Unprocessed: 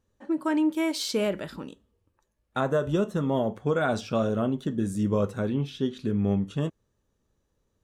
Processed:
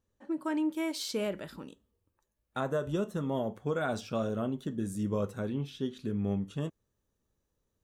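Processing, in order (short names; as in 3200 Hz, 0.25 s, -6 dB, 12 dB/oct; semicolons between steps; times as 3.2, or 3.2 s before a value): high shelf 11000 Hz +4 dB, from 1.47 s +10.5 dB; gain -6.5 dB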